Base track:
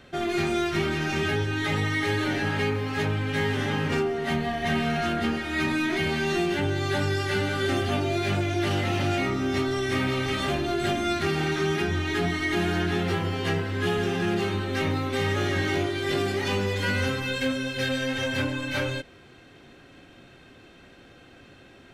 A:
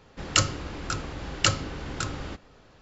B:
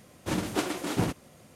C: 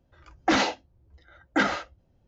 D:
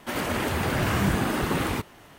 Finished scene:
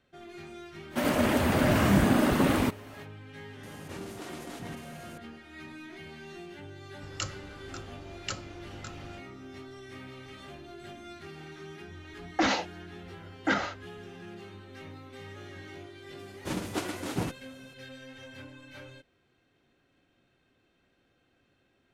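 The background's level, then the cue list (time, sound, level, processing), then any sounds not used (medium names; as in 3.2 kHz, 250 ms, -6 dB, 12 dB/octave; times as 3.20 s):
base track -19.5 dB
0.89 s: add D -1.5 dB, fades 0.05 s + small resonant body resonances 250/590 Hz, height 8 dB, ringing for 30 ms
3.63 s: add B -17 dB + level flattener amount 70%
6.84 s: add A -13.5 dB
11.91 s: add C -4 dB
16.19 s: add B -4 dB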